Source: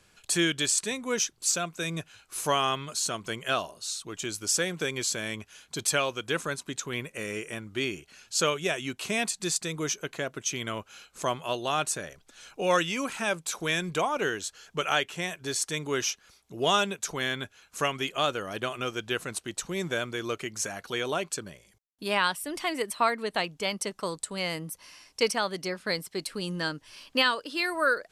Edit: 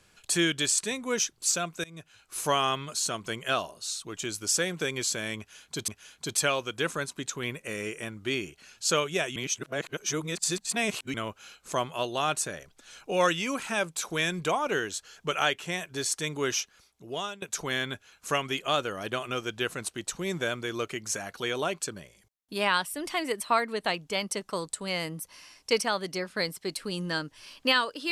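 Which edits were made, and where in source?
0:01.84–0:02.39: fade in, from −23 dB
0:05.38–0:05.88: repeat, 2 plays
0:08.86–0:10.64: reverse
0:16.07–0:16.92: fade out, to −20 dB

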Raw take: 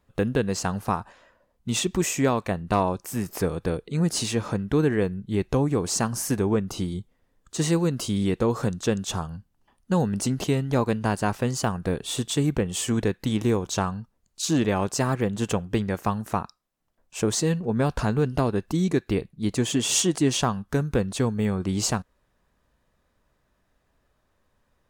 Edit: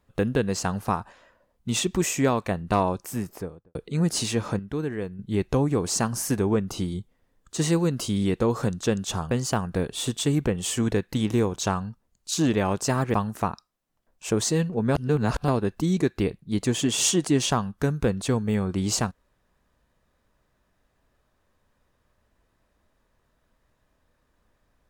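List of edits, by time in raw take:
0:03.01–0:03.75: fade out and dull
0:04.59–0:05.19: clip gain −7.5 dB
0:09.31–0:11.42: remove
0:15.25–0:16.05: remove
0:17.86–0:18.39: reverse

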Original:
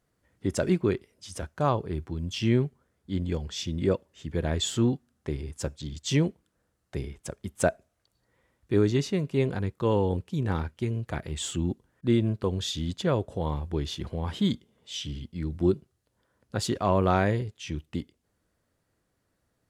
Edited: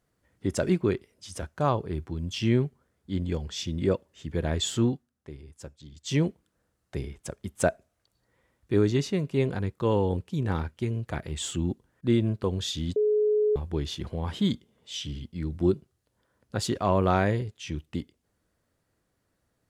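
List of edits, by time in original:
0:04.84–0:06.22: duck −11 dB, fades 0.27 s
0:12.96–0:13.56: beep over 423 Hz −20 dBFS

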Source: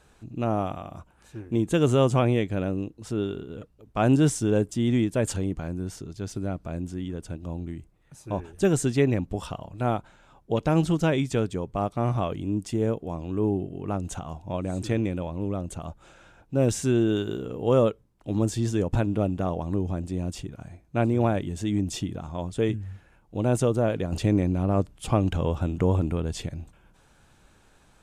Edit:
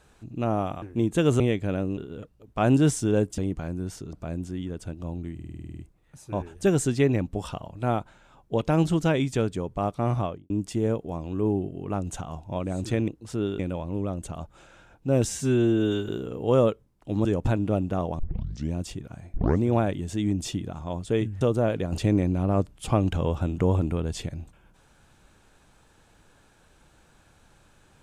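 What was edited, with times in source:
0:00.82–0:01.38: remove
0:01.96–0:02.28: remove
0:02.85–0:03.36: move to 0:15.06
0:04.77–0:05.38: remove
0:06.13–0:06.56: remove
0:07.77: stutter 0.05 s, 10 plays
0:12.15–0:12.48: fade out and dull
0:16.72–0:17.28: time-stretch 1.5×
0:18.44–0:18.73: remove
0:19.67: tape start 0.55 s
0:20.82: tape start 0.27 s
0:22.89–0:23.61: remove

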